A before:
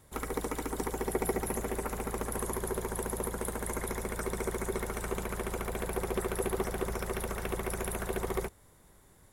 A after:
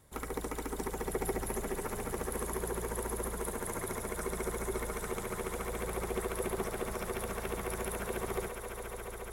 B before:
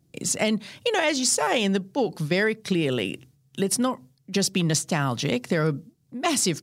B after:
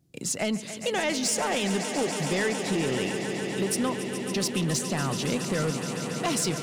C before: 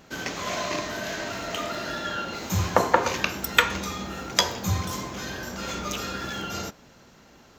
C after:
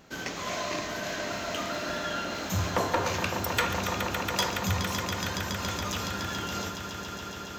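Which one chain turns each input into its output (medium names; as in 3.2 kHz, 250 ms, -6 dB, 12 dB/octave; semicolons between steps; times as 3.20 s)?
echo with a slow build-up 140 ms, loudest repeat 5, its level -12.5 dB; saturation -15.5 dBFS; trim -3 dB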